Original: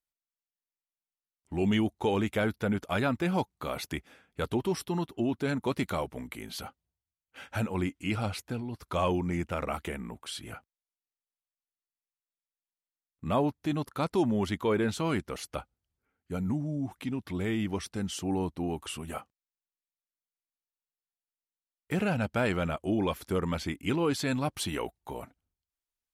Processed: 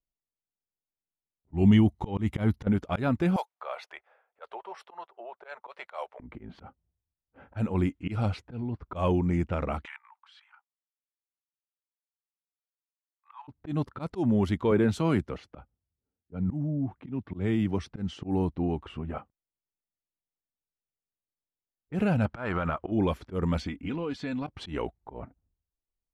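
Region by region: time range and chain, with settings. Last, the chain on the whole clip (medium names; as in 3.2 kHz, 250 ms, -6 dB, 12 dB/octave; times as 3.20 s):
1.53–2.67 s: bass shelf 210 Hz +4 dB + comb 1 ms, depth 34% + slow attack 216 ms
3.36–6.20 s: inverse Chebyshev high-pass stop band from 290 Hz + treble shelf 9 kHz +10.5 dB + tape noise reduction on one side only encoder only
9.85–13.48 s: steep high-pass 850 Hz 96 dB/octave + peaking EQ 5.3 kHz +13 dB 2.6 oct + level held to a coarse grid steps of 13 dB
14.71–17.89 s: high-pass 60 Hz + three bands expanded up and down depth 40%
22.25–22.92 s: low-pass 7.3 kHz + peaking EQ 1.2 kHz +14.5 dB 1.6 oct + compression, threshold -26 dBFS
23.57–24.47 s: treble shelf 2.2 kHz +9 dB + comb 4.1 ms, depth 48% + compression 3:1, threshold -34 dBFS
whole clip: level-controlled noise filter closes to 710 Hz, open at -25.5 dBFS; tilt EQ -2 dB/octave; slow attack 119 ms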